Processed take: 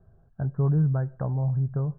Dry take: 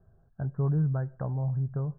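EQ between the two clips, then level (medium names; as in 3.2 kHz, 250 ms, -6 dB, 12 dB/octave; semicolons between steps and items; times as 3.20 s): distance through air 230 m; +4.0 dB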